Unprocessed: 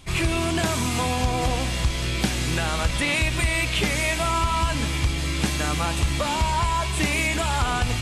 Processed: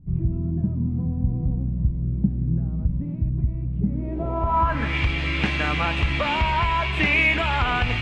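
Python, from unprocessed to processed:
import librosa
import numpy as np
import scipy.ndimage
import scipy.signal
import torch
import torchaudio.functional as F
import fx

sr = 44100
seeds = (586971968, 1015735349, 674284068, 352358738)

y = fx.resample_bad(x, sr, factor=2, down='none', up='hold', at=(6.39, 7.68))
y = fx.filter_sweep_lowpass(y, sr, from_hz=180.0, to_hz=2500.0, start_s=3.84, end_s=4.98, q=2.2)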